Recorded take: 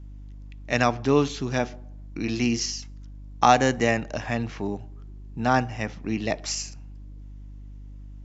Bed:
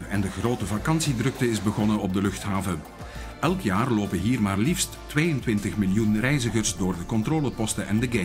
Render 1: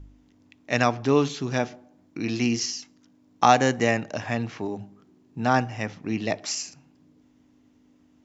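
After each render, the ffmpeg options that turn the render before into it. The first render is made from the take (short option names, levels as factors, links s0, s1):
-af "bandreject=f=50:t=h:w=4,bandreject=f=100:t=h:w=4,bandreject=f=150:t=h:w=4,bandreject=f=200:t=h:w=4"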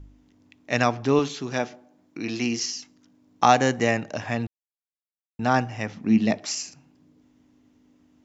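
-filter_complex "[0:a]asettb=1/sr,asplit=3[s0][s1][s2];[s0]atrim=end=1.194[s3];[s1]atrim=start=1.19:end=2.76,asetpts=PTS-STARTPTS,afade=t=in:d=0.004:c=qsin,afade=t=out:st=1.566:d=0.004:c=qsin,highpass=f=210:p=1[s4];[s2]atrim=start=2.756[s5];[s3][s4]acrossfade=d=0.004:c1=hsin:c2=qsin[s6];[s6][s5]acrossfade=d=0.004:c1=qsin:c2=hsin,asettb=1/sr,asplit=3[s7][s8][s9];[s7]atrim=end=5.944[s10];[s8]atrim=start=5.94:end=6.38,asetpts=PTS-STARTPTS,afade=t=in:d=0.004:c=qsin,afade=t=out:st=0.436:d=0.004:c=qsin,equalizer=f=220:w=4.2:g=12[s11];[s9]atrim=start=6.376[s12];[s10][s11]acrossfade=d=0.004:c1=hsin:c2=qsin[s13];[s13][s12]acrossfade=d=0.004:c1=qsin:c2=hsin,asplit=3[s14][s15][s16];[s14]atrim=end=4.47,asetpts=PTS-STARTPTS,afade=t=out:st=4.466:d=0.004:c=hsin[s17];[s15]atrim=start=4.47:end=5.39,asetpts=PTS-STARTPTS,volume=0[s18];[s16]atrim=start=5.39,asetpts=PTS-STARTPTS,afade=t=in:d=0.004:c=hsin[s19];[s17][s18][s19]concat=n=3:v=0:a=1"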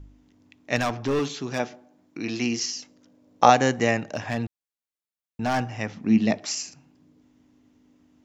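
-filter_complex "[0:a]asettb=1/sr,asplit=3[s0][s1][s2];[s0]atrim=end=0.764[s3];[s1]atrim=start=0.76:end=1.6,asetpts=PTS-STARTPTS,afade=t=in:d=0.004:c=qsin,afade=t=out:st=0.836:d=0.004:c=qsin,asoftclip=type=hard:threshold=0.106[s4];[s2]atrim=start=1.596[s5];[s3][s4]acrossfade=d=0.004:c1=hsin:c2=qsin[s6];[s6][s5]acrossfade=d=0.004:c1=qsin:c2=hsin,asettb=1/sr,asplit=3[s7][s8][s9];[s7]atrim=end=2.764[s10];[s8]atrim=start=2.76:end=3.5,asetpts=PTS-STARTPTS,afade=t=in:d=0.004:c=qsin,afade=t=out:st=0.736:d=0.004:c=qsin,equalizer=f=540:w=2.8:g=12.5[s11];[s9]atrim=start=3.496[s12];[s10][s11]acrossfade=d=0.004:c1=hsin:c2=qsin[s13];[s13][s12]acrossfade=d=0.004:c1=qsin:c2=hsin,asettb=1/sr,asplit=3[s14][s15][s16];[s14]atrim=end=4.124[s17];[s15]atrim=start=4.12:end=5.63,asetpts=PTS-STARTPTS,afade=t=in:d=0.004:c=qsin,afade=t=out:st=1.506:d=0.004:c=qsin,volume=8.41,asoftclip=hard,volume=0.119[s18];[s16]atrim=start=5.626[s19];[s17][s18]acrossfade=d=0.004:c1=hsin:c2=qsin[s20];[s20][s19]acrossfade=d=0.004:c1=qsin:c2=hsin"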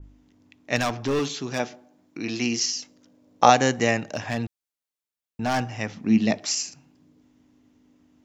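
-af "adynamicequalizer=threshold=0.0158:dfrequency=2700:dqfactor=0.7:tfrequency=2700:tqfactor=0.7:attack=5:release=100:ratio=0.375:range=2:mode=boostabove:tftype=highshelf"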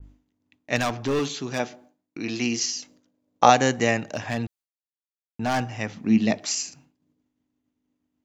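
-af "agate=range=0.0224:threshold=0.00398:ratio=3:detection=peak,bandreject=f=5400:w=17"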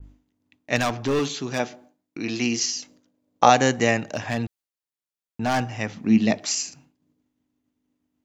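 -af "volume=1.19,alimiter=limit=0.794:level=0:latency=1"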